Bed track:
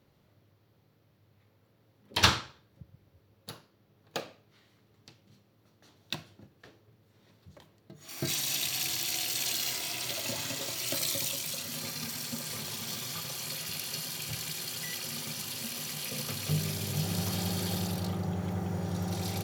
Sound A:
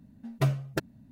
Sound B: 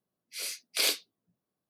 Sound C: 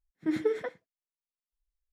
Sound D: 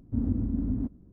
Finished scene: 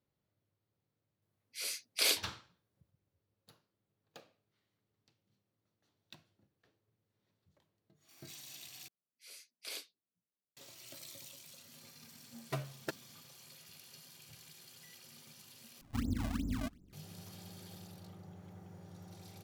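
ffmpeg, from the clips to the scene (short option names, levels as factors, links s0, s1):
-filter_complex "[2:a]asplit=2[s0][s1];[0:a]volume=0.106[s2];[1:a]highpass=f=350:p=1[s3];[4:a]acrusher=samples=28:mix=1:aa=0.000001:lfo=1:lforange=44.8:lforate=2.7[s4];[s2]asplit=3[s5][s6][s7];[s5]atrim=end=8.884[s8];[s1]atrim=end=1.69,asetpts=PTS-STARTPTS,volume=0.133[s9];[s6]atrim=start=10.566:end=15.814[s10];[s4]atrim=end=1.12,asetpts=PTS-STARTPTS,volume=0.398[s11];[s7]atrim=start=16.926[s12];[s0]atrim=end=1.69,asetpts=PTS-STARTPTS,volume=0.708,afade=t=in:d=0.004:c=hsin,afade=t=out:st=1.686:d=0.004:c=hsin,adelay=1220[s13];[s3]atrim=end=1.11,asetpts=PTS-STARTPTS,volume=0.447,afade=t=in:d=0.004:c=hsin,afade=t=out:st=1.106:d=0.004:c=hsin,adelay=12110[s14];[s8][s9]acrossfade=d=0.004:c1=hsin:c2=hsin[s15];[s15][s10]acrossfade=d=0.004:c1=hsin:c2=hsin[s16];[s16][s11]acrossfade=d=0.004:c1=hsin:c2=hsin[s17];[s17][s12]acrossfade=d=0.004:c1=hsin:c2=hsin[s18];[s18][s13][s14]amix=inputs=3:normalize=0"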